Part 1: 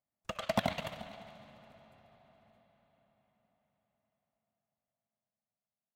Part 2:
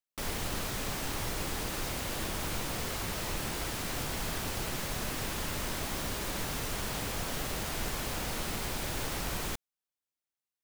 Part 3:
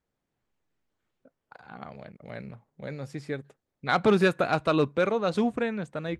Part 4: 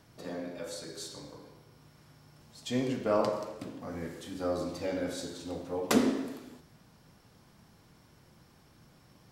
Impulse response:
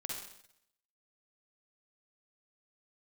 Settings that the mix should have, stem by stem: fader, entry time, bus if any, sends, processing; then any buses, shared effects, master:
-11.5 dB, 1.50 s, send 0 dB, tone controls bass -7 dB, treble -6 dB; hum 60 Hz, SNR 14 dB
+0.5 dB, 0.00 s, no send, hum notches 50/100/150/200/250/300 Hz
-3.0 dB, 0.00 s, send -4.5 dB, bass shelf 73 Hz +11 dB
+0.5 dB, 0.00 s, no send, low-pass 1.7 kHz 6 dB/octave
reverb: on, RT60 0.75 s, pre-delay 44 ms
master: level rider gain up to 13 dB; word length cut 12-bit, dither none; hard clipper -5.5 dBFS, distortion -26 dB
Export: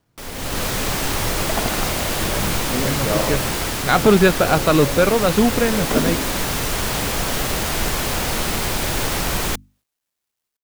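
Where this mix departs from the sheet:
stem 1: entry 1.50 s -> 1.00 s; stem 3: send off; stem 4 +0.5 dB -> -7.5 dB

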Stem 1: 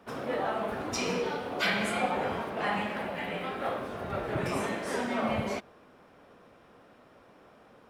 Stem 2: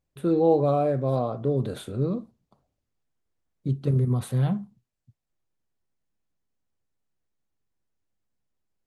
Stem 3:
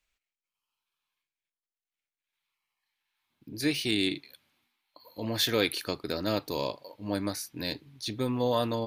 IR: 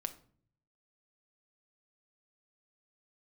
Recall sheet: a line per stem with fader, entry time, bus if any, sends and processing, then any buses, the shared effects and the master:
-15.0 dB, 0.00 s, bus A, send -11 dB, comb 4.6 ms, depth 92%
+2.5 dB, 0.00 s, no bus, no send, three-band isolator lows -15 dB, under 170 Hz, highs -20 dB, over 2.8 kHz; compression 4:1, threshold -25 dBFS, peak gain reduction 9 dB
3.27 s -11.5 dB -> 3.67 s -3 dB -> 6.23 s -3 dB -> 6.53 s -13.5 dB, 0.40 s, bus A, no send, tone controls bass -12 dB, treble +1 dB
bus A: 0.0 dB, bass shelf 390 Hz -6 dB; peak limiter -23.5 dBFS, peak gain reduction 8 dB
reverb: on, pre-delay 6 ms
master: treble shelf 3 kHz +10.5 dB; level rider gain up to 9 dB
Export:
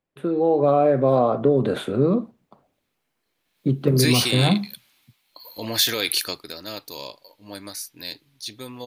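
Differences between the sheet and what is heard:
stem 1: muted; stem 3: missing tone controls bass -12 dB, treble +1 dB; reverb: off

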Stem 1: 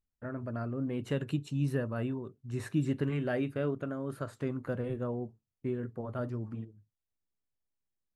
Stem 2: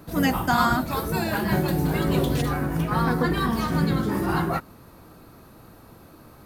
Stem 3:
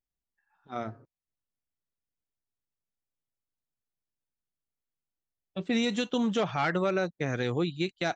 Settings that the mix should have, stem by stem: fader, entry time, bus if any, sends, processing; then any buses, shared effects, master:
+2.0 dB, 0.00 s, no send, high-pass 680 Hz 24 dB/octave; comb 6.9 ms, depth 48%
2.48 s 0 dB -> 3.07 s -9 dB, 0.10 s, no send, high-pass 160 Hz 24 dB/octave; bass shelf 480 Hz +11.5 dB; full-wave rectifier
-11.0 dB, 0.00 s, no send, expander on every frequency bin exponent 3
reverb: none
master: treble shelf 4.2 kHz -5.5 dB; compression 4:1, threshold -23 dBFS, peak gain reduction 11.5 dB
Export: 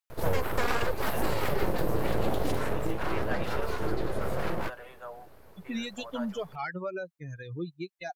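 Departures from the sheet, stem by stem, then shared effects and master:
stem 3 -11.0 dB -> -2.5 dB; master: missing treble shelf 4.2 kHz -5.5 dB

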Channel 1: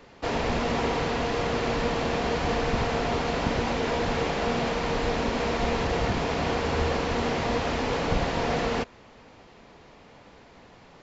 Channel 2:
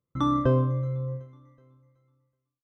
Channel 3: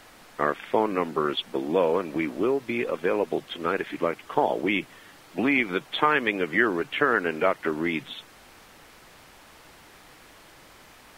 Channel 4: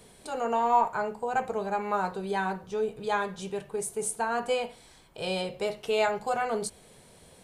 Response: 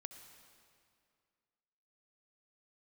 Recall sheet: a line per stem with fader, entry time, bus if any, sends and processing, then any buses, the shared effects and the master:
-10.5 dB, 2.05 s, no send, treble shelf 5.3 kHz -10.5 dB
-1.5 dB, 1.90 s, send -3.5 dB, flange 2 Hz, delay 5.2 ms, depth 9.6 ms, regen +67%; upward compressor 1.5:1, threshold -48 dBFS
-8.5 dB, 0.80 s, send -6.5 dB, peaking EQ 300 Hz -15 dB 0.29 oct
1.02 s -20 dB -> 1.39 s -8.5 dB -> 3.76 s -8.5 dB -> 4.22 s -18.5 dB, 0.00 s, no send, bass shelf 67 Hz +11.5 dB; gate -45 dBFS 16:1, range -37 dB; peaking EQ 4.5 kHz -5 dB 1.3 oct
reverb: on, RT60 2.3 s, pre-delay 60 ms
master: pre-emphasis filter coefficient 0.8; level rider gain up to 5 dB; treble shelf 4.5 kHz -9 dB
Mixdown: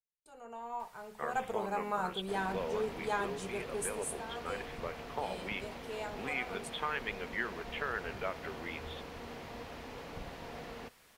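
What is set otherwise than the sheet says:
stem 2: muted; stem 4 -20.0 dB -> -9.5 dB

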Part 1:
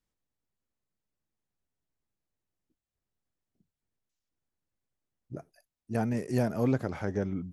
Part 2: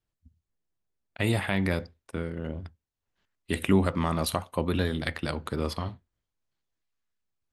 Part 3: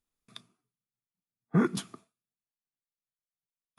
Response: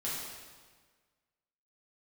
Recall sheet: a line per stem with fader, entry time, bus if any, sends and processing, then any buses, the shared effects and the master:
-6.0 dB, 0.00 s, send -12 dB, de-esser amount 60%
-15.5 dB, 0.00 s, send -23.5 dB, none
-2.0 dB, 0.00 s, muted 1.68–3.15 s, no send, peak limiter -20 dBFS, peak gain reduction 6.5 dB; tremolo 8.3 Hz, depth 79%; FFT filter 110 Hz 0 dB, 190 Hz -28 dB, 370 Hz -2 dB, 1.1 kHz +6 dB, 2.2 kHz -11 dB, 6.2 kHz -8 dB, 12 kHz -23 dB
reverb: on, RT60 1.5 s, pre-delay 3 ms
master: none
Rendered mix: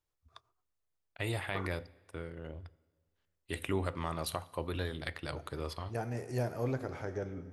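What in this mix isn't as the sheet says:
stem 2 -15.5 dB -> -8.0 dB; master: extra peaking EQ 210 Hz -14.5 dB 0.46 oct

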